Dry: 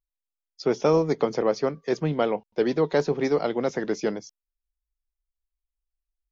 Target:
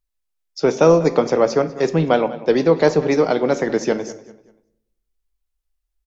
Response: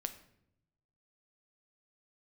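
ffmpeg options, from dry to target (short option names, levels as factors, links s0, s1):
-filter_complex "[0:a]asplit=2[s0][s1];[s1]adelay=202,lowpass=f=4200:p=1,volume=0.141,asplit=2[s2][s3];[s3]adelay=202,lowpass=f=4200:p=1,volume=0.35,asplit=2[s4][s5];[s5]adelay=202,lowpass=f=4200:p=1,volume=0.35[s6];[s0][s2][s4][s6]amix=inputs=4:normalize=0,asplit=2[s7][s8];[1:a]atrim=start_sample=2205[s9];[s8][s9]afir=irnorm=-1:irlink=0,volume=2.82[s10];[s7][s10]amix=inputs=2:normalize=0,asetrate=45938,aresample=44100,volume=0.668"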